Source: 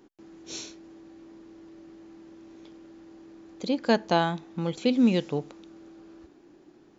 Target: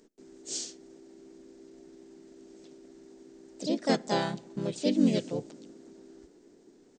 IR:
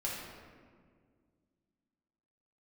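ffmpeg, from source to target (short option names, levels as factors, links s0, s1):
-filter_complex "[0:a]equalizer=f=100:t=o:w=0.67:g=-10,equalizer=f=1000:t=o:w=0.67:g=-11,equalizer=f=2500:t=o:w=0.67:g=-5,equalizer=f=6300:t=o:w=0.67:g=9,asplit=2[s0][s1];[1:a]atrim=start_sample=2205,highshelf=f=2300:g=-9[s2];[s1][s2]afir=irnorm=-1:irlink=0,volume=0.0531[s3];[s0][s3]amix=inputs=2:normalize=0,asplit=3[s4][s5][s6];[s5]asetrate=35002,aresample=44100,atempo=1.25992,volume=0.562[s7];[s6]asetrate=52444,aresample=44100,atempo=0.840896,volume=1[s8];[s4][s7][s8]amix=inputs=3:normalize=0,volume=0.501"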